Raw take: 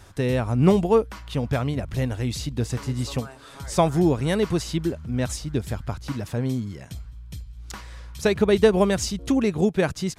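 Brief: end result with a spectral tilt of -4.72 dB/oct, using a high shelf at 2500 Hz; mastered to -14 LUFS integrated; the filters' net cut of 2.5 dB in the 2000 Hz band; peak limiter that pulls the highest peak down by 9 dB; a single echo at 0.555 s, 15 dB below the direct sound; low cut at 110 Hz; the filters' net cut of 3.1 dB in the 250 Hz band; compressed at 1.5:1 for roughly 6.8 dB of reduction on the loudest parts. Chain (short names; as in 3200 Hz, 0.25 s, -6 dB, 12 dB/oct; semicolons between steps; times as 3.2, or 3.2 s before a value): HPF 110 Hz; bell 250 Hz -4 dB; bell 2000 Hz -6 dB; high shelf 2500 Hz +6 dB; compressor 1.5:1, threshold -31 dBFS; limiter -22 dBFS; echo 0.555 s -15 dB; gain +18.5 dB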